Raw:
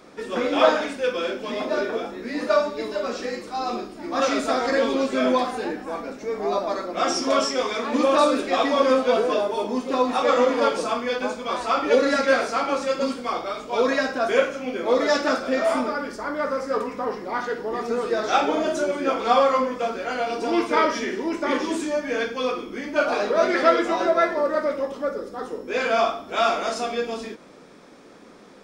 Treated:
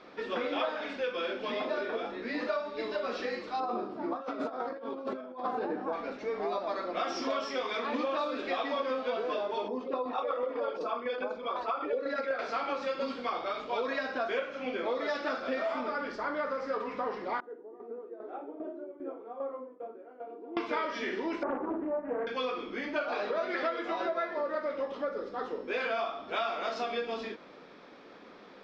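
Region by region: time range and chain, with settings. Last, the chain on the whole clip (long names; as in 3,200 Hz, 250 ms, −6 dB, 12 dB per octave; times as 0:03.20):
0:03.60–0:05.93: flat-topped bell 3,700 Hz −13 dB 2.5 octaves + compressor whose output falls as the input rises −28 dBFS, ratio −0.5 + high-pass filter 92 Hz 24 dB per octave
0:09.68–0:12.39: spectral envelope exaggerated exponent 1.5 + shaped tremolo saw down 8 Hz, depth 50%
0:17.40–0:20.57: four-pole ladder band-pass 380 Hz, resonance 50% + shaped tremolo saw down 2.5 Hz, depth 70%
0:21.43–0:22.27: low-pass filter 1,100 Hz 24 dB per octave + highs frequency-modulated by the lows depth 0.35 ms
whole clip: low-pass filter 4,400 Hz 24 dB per octave; low-shelf EQ 290 Hz −9 dB; downward compressor, threshold −28 dBFS; level −1.5 dB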